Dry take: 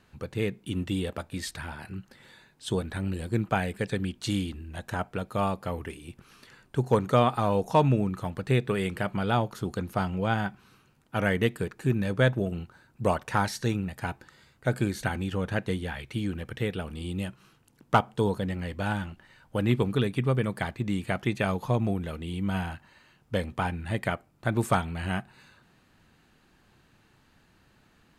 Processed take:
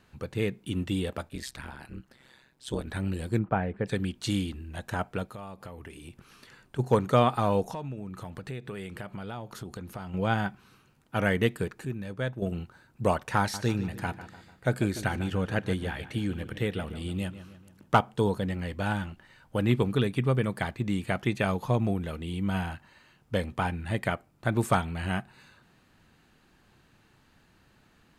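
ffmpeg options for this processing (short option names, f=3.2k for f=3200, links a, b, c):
-filter_complex "[0:a]asettb=1/sr,asplit=3[a][b][c];[a]atrim=end=1.294[d];[b]atrim=start=1.29:end=2.87,asetpts=PTS-STARTPTS,afade=t=in:d=0.004:c=qsin,afade=t=out:st=1.576:d=0.004:c=qsin,tremolo=f=130:d=0.889[e];[c]atrim=start=2.866[f];[d][e]acrossfade=d=0.004:c1=hsin:c2=qsin[g];[g][f]acrossfade=d=0.004:c1=qsin:c2=hsin,asplit=3[h][i][j];[h]afade=t=out:st=3.38:d=0.02[k];[i]lowpass=1.4k,afade=t=in:st=3.38:d=0.02,afade=t=out:st=3.85:d=0.02[l];[j]afade=t=in:st=3.85:d=0.02[m];[k][l][m]amix=inputs=3:normalize=0,asplit=3[n][o][p];[n]afade=t=out:st=5.26:d=0.02[q];[o]acompressor=threshold=-40dB:ratio=4:attack=3.2:release=140:knee=1:detection=peak,afade=t=in:st=5.26:d=0.02,afade=t=out:st=6.78:d=0.02[r];[p]afade=t=in:st=6.78:d=0.02[s];[q][r][s]amix=inputs=3:normalize=0,asettb=1/sr,asplit=3[t][u][v];[t]atrim=end=7.714[w];[u]atrim=start=7.71:end=10.14,asetpts=PTS-STARTPTS,afade=t=in:d=0.004:c=qsin,afade=t=out:st=2.426:d=0.004:c=qsin,acompressor=threshold=-36dB:ratio=4:attack=3.2:release=140:knee=1:detection=peak[x];[v]atrim=start=10.136[y];[w][x]acrossfade=d=0.004:c1=hsin:c2=qsin[z];[z][y]acrossfade=d=0.004:c1=qsin:c2=hsin,asettb=1/sr,asplit=3[aa][ab][ac];[aa]atrim=end=13.394[ad];[ab]atrim=start=13.39:end=18,asetpts=PTS-STARTPTS,afade=t=in:d=0.004:c=qsin,afade=t=out:st=4.606:d=0.004:c=qsin,asplit=2[ae][af];[af]adelay=148,lowpass=f=3.8k:p=1,volume=-13dB,asplit=2[ag][ah];[ah]adelay=148,lowpass=f=3.8k:p=1,volume=0.5,asplit=2[ai][aj];[aj]adelay=148,lowpass=f=3.8k:p=1,volume=0.5,asplit=2[ak][al];[al]adelay=148,lowpass=f=3.8k:p=1,volume=0.5,asplit=2[am][an];[an]adelay=148,lowpass=f=3.8k:p=1,volume=0.5[ao];[ae][ag][ai][ak][am][ao]amix=inputs=6:normalize=0,atrim=end_sample=203301[ap];[ac]atrim=start=17.996[aq];[ad][ap]acrossfade=d=0.004:c1=hsin:c2=qsin[ar];[ar][aq]acrossfade=d=0.004:c1=qsin:c2=hsin,asplit=3[as][at][au];[as]atrim=end=11.852[av];[at]atrim=start=11.848:end=12.422,asetpts=PTS-STARTPTS,volume=-9dB[aw];[au]atrim=start=12.418[ax];[av][aw]acrossfade=d=0.004:c1=hsin:c2=hsin[ay];[ay][ax]acrossfade=d=0.004:c1=hsin:c2=hsin"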